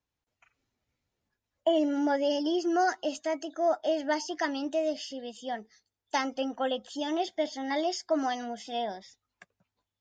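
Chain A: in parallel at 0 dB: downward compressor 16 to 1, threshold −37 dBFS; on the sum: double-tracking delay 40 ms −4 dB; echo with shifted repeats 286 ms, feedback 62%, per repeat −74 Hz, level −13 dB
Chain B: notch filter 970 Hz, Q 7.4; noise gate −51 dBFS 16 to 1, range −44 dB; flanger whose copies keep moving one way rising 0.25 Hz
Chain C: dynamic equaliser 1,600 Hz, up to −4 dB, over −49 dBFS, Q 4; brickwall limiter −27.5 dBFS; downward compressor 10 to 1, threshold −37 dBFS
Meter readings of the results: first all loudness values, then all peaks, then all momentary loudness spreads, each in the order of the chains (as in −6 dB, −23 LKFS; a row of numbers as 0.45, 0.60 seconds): −27.0, −36.0, −41.5 LKFS; −12.0, −19.5, −27.5 dBFS; 9, 12, 7 LU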